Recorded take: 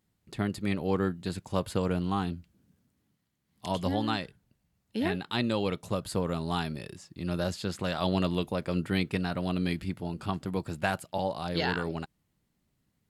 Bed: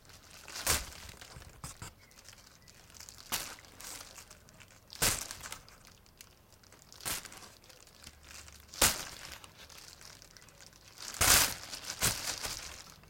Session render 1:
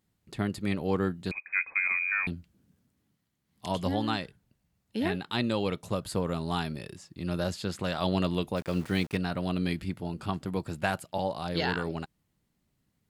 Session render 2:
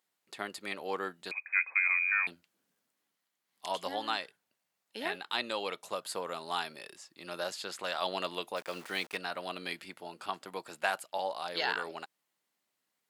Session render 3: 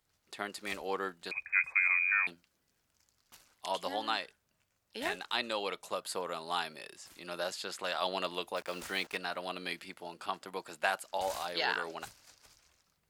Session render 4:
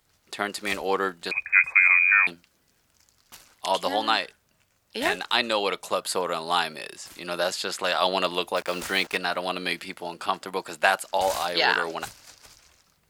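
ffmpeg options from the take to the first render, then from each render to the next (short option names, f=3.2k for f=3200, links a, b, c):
-filter_complex "[0:a]asettb=1/sr,asplit=3[a][b][c];[a]atrim=end=1.314[d];[b]atrim=start=1.31:end=2.27,asetpts=PTS-STARTPTS,afade=t=in:d=0.004:c=qsin,afade=t=out:st=0.956:d=0.004:c=qsin,lowpass=f=2.2k:t=q:w=0.5098,lowpass=f=2.2k:t=q:w=0.6013,lowpass=f=2.2k:t=q:w=0.9,lowpass=f=2.2k:t=q:w=2.563,afreqshift=-2600[e];[c]atrim=start=2.266[f];[d][e]acrossfade=d=0.004:c1=hsin:c2=qsin[g];[g][f]acrossfade=d=0.004:c1=qsin:c2=hsin,asettb=1/sr,asplit=3[h][i][j];[h]atrim=end=8.564[k];[i]atrim=start=8.56:end=9.17,asetpts=PTS-STARTPTS,afade=t=in:d=0.004:c=qsin,afade=t=out:st=0.606:d=0.004:c=qsin,aeval=exprs='val(0)*gte(abs(val(0)),0.00794)':c=same[l];[j]atrim=start=9.166[m];[k][l]acrossfade=d=0.004:c1=hsin:c2=qsin[n];[n][m]acrossfade=d=0.004:c1=qsin:c2=hsin"
-af "highpass=640"
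-filter_complex "[1:a]volume=-22.5dB[a];[0:a][a]amix=inputs=2:normalize=0"
-af "volume=10.5dB"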